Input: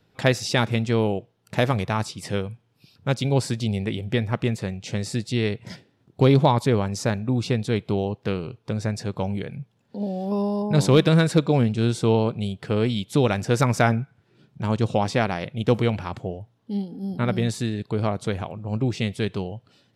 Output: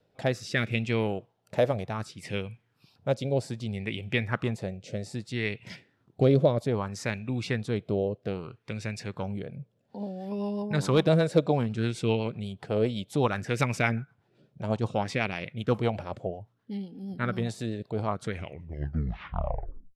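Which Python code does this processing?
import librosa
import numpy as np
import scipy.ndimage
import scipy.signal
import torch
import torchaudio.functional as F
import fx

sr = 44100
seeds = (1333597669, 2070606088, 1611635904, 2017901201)

y = fx.tape_stop_end(x, sr, length_s=1.67)
y = fx.rotary_switch(y, sr, hz=0.65, then_hz=8.0, switch_at_s=9.73)
y = fx.bell_lfo(y, sr, hz=0.62, low_hz=550.0, high_hz=2600.0, db=12)
y = F.gain(torch.from_numpy(y), -6.0).numpy()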